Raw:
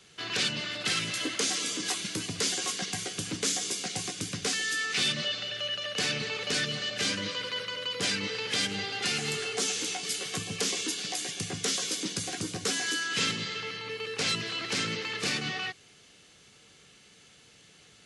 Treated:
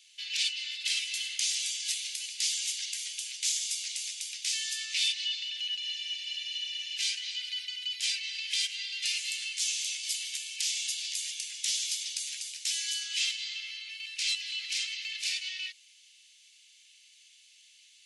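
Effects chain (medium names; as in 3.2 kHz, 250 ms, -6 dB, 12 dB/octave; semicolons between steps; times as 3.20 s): steep high-pass 2.3 kHz 36 dB/octave; spectral freeze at 5.82 s, 1.14 s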